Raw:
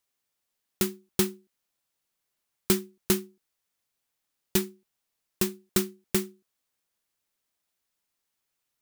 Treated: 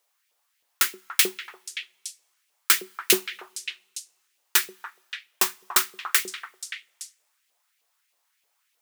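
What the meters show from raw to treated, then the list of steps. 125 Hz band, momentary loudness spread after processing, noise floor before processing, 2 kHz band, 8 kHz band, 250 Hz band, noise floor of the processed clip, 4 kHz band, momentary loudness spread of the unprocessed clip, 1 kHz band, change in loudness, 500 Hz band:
below −15 dB, 18 LU, −82 dBFS, +13.0 dB, +8.0 dB, −10.0 dB, −74 dBFS, +10.0 dB, 3 LU, +11.0 dB, +5.0 dB, −4.0 dB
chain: auto-filter high-pass saw up 3.2 Hz 450–2,700 Hz
echo through a band-pass that steps 288 ms, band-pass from 970 Hz, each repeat 1.4 octaves, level −5 dB
coupled-rooms reverb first 0.25 s, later 1.6 s, from −21 dB, DRR 15.5 dB
level +7.5 dB

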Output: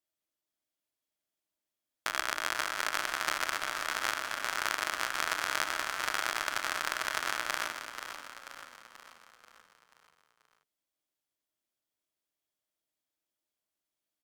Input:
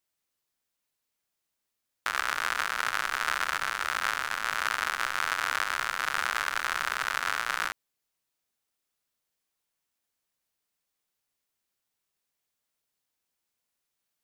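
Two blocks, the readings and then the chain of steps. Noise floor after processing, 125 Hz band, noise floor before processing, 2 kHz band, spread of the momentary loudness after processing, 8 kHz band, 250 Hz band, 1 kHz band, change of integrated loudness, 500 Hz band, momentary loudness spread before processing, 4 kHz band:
below −85 dBFS, −2.5 dB, −83 dBFS, −4.0 dB, 12 LU, +0.5 dB, +1.5 dB, −4.0 dB, −3.5 dB, +1.0 dB, 2 LU, −1.0 dB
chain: hollow resonant body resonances 320/620/3,300 Hz, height 10 dB
harmonic generator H 3 −14 dB, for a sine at −9 dBFS
echo with shifted repeats 485 ms, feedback 52%, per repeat −30 Hz, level −9 dB

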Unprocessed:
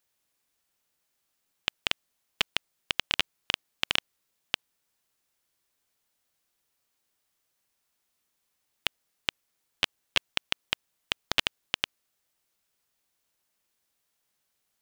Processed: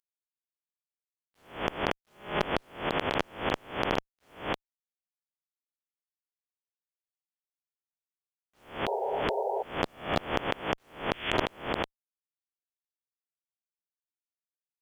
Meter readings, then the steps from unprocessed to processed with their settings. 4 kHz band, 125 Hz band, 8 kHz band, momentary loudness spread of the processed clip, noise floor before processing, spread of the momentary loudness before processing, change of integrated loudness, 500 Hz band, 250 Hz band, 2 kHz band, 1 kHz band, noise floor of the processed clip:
−8.5 dB, +10.5 dB, −9.5 dB, 6 LU, −78 dBFS, 7 LU, −1.0 dB, +15.0 dB, +13.0 dB, −1.5 dB, +10.0 dB, below −85 dBFS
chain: peak hold with a rise ahead of every peak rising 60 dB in 0.41 s
voice inversion scrambler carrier 3,400 Hz
low-shelf EQ 200 Hz −4 dB
healed spectral selection 0:08.90–0:09.60, 380–960 Hz before
bit reduction 11 bits
asymmetric clip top −18 dBFS, bottom −10 dBFS

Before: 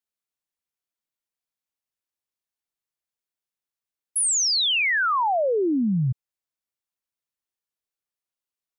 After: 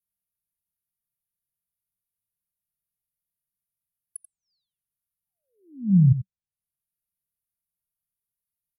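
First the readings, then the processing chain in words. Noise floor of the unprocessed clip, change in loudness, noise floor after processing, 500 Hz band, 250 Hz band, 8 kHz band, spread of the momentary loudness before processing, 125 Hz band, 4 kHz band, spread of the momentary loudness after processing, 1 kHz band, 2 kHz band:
below −85 dBFS, 0.0 dB, below −85 dBFS, below −40 dB, +1.0 dB, −25.5 dB, 9 LU, +7.0 dB, below −40 dB, 11 LU, below −40 dB, below −40 dB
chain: Chebyshev band-stop filter 190–9,600 Hz, order 5
treble cut that deepens with the level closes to 370 Hz, closed at −28.5 dBFS
slap from a distant wall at 15 metres, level −12 dB
level +7.5 dB

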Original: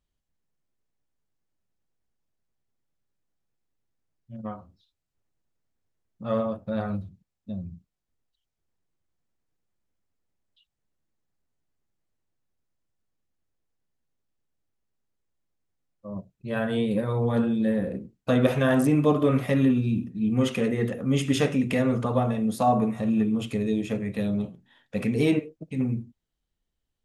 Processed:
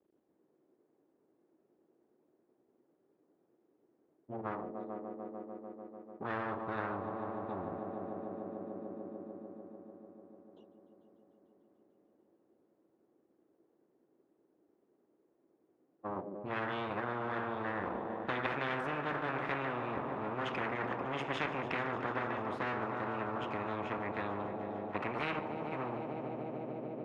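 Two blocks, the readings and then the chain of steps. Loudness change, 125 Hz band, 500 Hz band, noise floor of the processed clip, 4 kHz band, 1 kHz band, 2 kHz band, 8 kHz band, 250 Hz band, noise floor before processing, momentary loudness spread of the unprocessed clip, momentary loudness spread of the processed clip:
−13.0 dB, −17.5 dB, −10.5 dB, −76 dBFS, −9.5 dB, −3.5 dB, −2.0 dB, below −20 dB, −16.5 dB, −83 dBFS, 15 LU, 11 LU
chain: half-wave rectification
four-pole ladder band-pass 390 Hz, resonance 55%
echo machine with several playback heads 148 ms, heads all three, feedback 70%, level −19.5 dB
every bin compressed towards the loudest bin 10 to 1
level +3 dB

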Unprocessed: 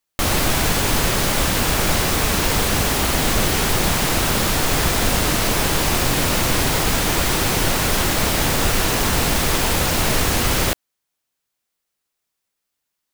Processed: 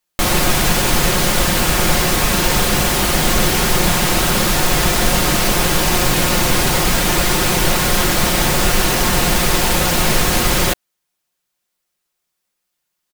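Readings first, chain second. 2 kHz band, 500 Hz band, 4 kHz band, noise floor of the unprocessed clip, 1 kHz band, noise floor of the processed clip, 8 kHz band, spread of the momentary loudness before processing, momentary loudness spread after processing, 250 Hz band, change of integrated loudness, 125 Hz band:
+3.5 dB, +3.5 dB, +3.5 dB, −79 dBFS, +3.5 dB, −76 dBFS, +3.5 dB, 0 LU, 0 LU, +3.5 dB, +3.5 dB, +2.5 dB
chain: comb filter 5.6 ms, depth 48%
level +2.5 dB

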